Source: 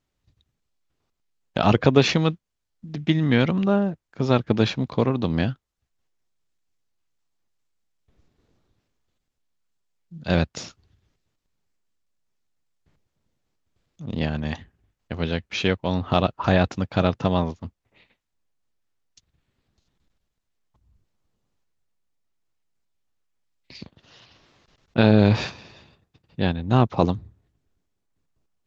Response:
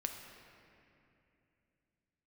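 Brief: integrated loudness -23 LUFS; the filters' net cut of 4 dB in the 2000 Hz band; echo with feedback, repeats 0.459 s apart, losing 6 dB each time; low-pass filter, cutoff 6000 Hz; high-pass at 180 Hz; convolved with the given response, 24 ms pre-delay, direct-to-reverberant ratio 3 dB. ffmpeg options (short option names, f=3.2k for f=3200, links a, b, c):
-filter_complex "[0:a]highpass=180,lowpass=6k,equalizer=f=2k:t=o:g=-5.5,aecho=1:1:459|918|1377|1836|2295|2754:0.501|0.251|0.125|0.0626|0.0313|0.0157,asplit=2[a][b];[1:a]atrim=start_sample=2205,adelay=24[c];[b][c]afir=irnorm=-1:irlink=0,volume=-3dB[d];[a][d]amix=inputs=2:normalize=0"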